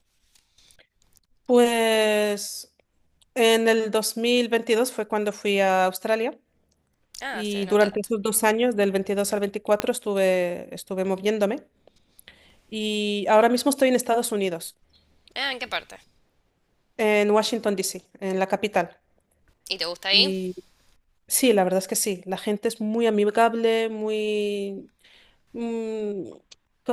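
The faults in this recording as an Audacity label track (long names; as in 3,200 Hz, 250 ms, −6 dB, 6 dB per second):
9.800000	9.800000	click −7 dBFS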